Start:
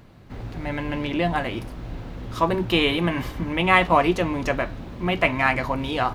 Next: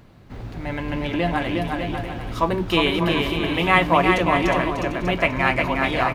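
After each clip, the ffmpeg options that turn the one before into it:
ffmpeg -i in.wav -af "aecho=1:1:360|594|746.1|845|909.2:0.631|0.398|0.251|0.158|0.1" out.wav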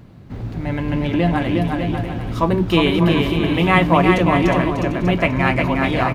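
ffmpeg -i in.wav -af "equalizer=frequency=150:width=0.46:gain=8.5" out.wav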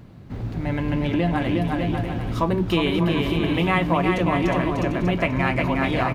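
ffmpeg -i in.wav -af "acompressor=threshold=-17dB:ratio=2.5,volume=-1.5dB" out.wav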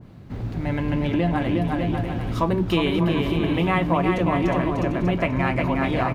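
ffmpeg -i in.wav -af "adynamicequalizer=threshold=0.0224:dfrequency=1600:dqfactor=0.7:tfrequency=1600:tqfactor=0.7:attack=5:release=100:ratio=0.375:range=2:mode=cutabove:tftype=highshelf" out.wav

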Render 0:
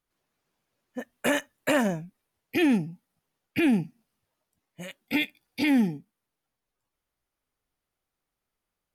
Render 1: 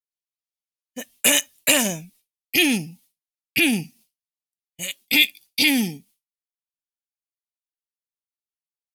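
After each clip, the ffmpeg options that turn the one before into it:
ffmpeg -i in.wav -af "agate=range=-33dB:threshold=-51dB:ratio=3:detection=peak,aexciter=amount=6.8:drive=5.1:freq=2300" out.wav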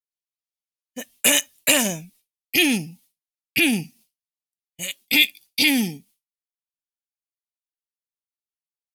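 ffmpeg -i in.wav -af anull out.wav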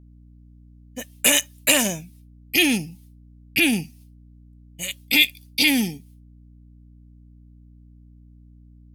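ffmpeg -i in.wav -af "aeval=exprs='val(0)+0.00447*(sin(2*PI*60*n/s)+sin(2*PI*2*60*n/s)/2+sin(2*PI*3*60*n/s)/3+sin(2*PI*4*60*n/s)/4+sin(2*PI*5*60*n/s)/5)':channel_layout=same" out.wav

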